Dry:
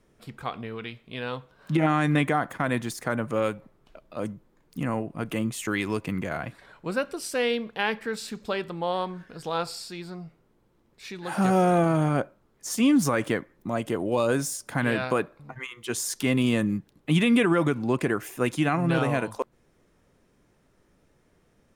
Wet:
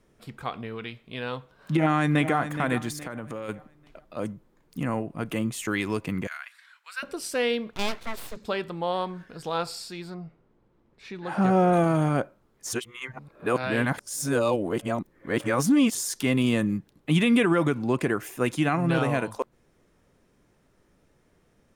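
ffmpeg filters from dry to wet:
-filter_complex "[0:a]asplit=2[a][b];[b]afade=t=in:st=1.78:d=0.01,afade=t=out:st=2.36:d=0.01,aecho=0:1:420|840|1260|1680:0.298538|0.104488|0.0365709|0.0127998[c];[a][c]amix=inputs=2:normalize=0,asplit=3[d][e][f];[d]afade=t=out:st=3.01:d=0.02[g];[e]acompressor=threshold=-31dB:ratio=6:attack=3.2:release=140:knee=1:detection=peak,afade=t=in:st=3.01:d=0.02,afade=t=out:st=3.48:d=0.02[h];[f]afade=t=in:st=3.48:d=0.02[i];[g][h][i]amix=inputs=3:normalize=0,asettb=1/sr,asplit=3[j][k][l];[j]atrim=end=6.274[m];[k]atrim=start=6.27:end=7.03,asetpts=PTS-STARTPTS,afade=t=in:d=0.004:c=qsin,afade=t=out:st=0.756:d=0.004:c=qsin,highpass=f=1.4k:w=0.5412,highpass=f=1.4k:w=1.3066[n];[l]atrim=start=7.026[o];[m][n]acrossfade=d=0.004:c1=hsin:c2=qsin[p];[p][o]acrossfade=d=0.004:c1=qsin:c2=hsin,asettb=1/sr,asplit=3[q][r][s];[q]atrim=end=7.734[t];[r]atrim=start=7.73:end=8.37,asetpts=PTS-STARTPTS,afade=t=in:d=0.004:c=qsin,afade=t=out:st=0.636:d=0.004:c=qsin,aeval=exprs='abs(val(0))':c=same[u];[s]atrim=start=8.366[v];[t][u]acrossfade=d=0.004:c1=hsin:c2=qsin[w];[w][v]acrossfade=d=0.004:c1=qsin:c2=hsin,asettb=1/sr,asplit=3[x][y][z];[x]atrim=end=10.144[aa];[y]atrim=start=10.14:end=11.73,asetpts=PTS-STARTPTS,afade=t=in:d=0.004:c=qsin,afade=t=out:st=1.586:d=0.004:c=qsin,aemphasis=mode=reproduction:type=75fm[ab];[z]atrim=start=11.726[ac];[aa][ab]acrossfade=d=0.004:c1=hsin:c2=qsin[ad];[ad][ac]acrossfade=d=0.004:c1=qsin:c2=hsin,asplit=3[ae][af][ag];[ae]atrim=end=12.732[ah];[af]atrim=start=12.728:end=15.952,asetpts=PTS-STARTPTS,areverse[ai];[ag]atrim=start=15.948[aj];[ah][ai]acrossfade=d=0.004:c1=hsin:c2=hsin[ak];[ak][aj]acrossfade=d=0.004:c1=hsin:c2=hsin"

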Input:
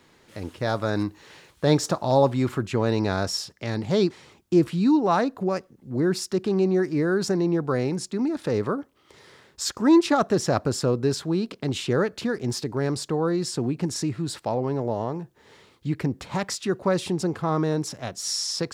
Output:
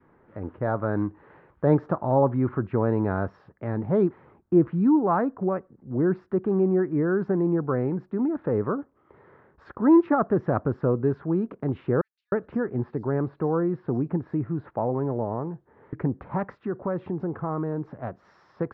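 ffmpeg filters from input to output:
-filter_complex "[0:a]asettb=1/sr,asplit=3[a][b][c];[a]atrim=end=12.014[d];[b]atrim=start=12.01:end=15.93,asetpts=PTS-STARTPTS,afade=t=in:d=0.004:c=qsin,afade=t=out:st=3.916:d=0.004:c=qsin,acrossover=split=4900[e][f];[e]adelay=310[g];[g][f]amix=inputs=2:normalize=0,atrim=end_sample=172872[h];[c]atrim=start=15.926[i];[d][h]acrossfade=d=0.004:c1=hsin:c2=qsin[j];[j][i]acrossfade=d=0.004:c1=qsin:c2=hsin,asettb=1/sr,asplit=3[k][l][m];[k]atrim=end=16.654[n];[l]atrim=start=16.65:end=17.95,asetpts=PTS-STARTPTS,afade=t=in:d=0.004:c=qsin,afade=t=out:st=1.296:d=0.004:c=qsin,acompressor=threshold=-27dB:ratio=2:attack=3.2:release=140:knee=1:detection=peak[o];[m]atrim=start=17.946[p];[n][o]acrossfade=d=0.004:c1=hsin:c2=qsin[q];[q][p]acrossfade=d=0.004:c1=qsin:c2=hsin,lowpass=f=1.5k:w=0.5412,lowpass=f=1.5k:w=1.3066,adynamicequalizer=threshold=0.02:dfrequency=650:dqfactor=1.5:tfrequency=650:tqfactor=1.5:attack=5:release=100:ratio=0.375:range=2:mode=cutabove:tftype=bell"

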